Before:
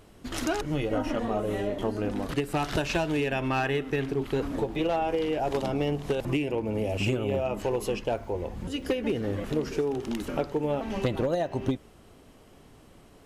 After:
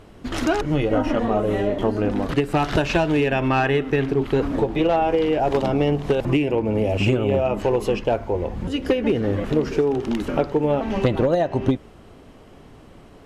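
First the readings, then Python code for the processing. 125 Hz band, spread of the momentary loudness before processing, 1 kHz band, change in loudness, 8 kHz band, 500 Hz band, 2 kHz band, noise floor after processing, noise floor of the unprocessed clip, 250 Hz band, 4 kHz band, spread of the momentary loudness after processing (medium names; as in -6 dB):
+8.0 dB, 4 LU, +7.5 dB, +7.5 dB, no reading, +8.0 dB, +6.5 dB, -46 dBFS, -54 dBFS, +8.0 dB, +5.0 dB, 4 LU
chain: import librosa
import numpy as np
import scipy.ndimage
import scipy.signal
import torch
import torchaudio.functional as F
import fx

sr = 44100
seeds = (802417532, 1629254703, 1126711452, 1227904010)

y = fx.lowpass(x, sr, hz=3100.0, slope=6)
y = y * 10.0 ** (8.0 / 20.0)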